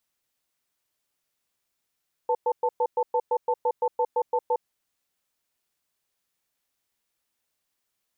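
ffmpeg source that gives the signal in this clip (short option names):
-f lavfi -i "aevalsrc='0.0708*(sin(2*PI*491*t)+sin(2*PI*885*t))*clip(min(mod(t,0.17),0.06-mod(t,0.17))/0.005,0,1)':d=2.31:s=44100"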